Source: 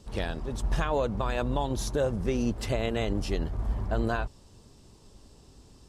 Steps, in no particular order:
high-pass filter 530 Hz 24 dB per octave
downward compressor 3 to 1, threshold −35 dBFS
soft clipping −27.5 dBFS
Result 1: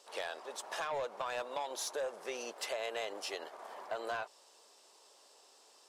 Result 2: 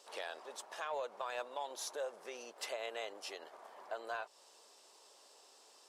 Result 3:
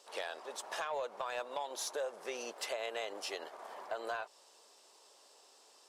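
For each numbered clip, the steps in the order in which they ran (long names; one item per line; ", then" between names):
high-pass filter, then soft clipping, then downward compressor
downward compressor, then high-pass filter, then soft clipping
high-pass filter, then downward compressor, then soft clipping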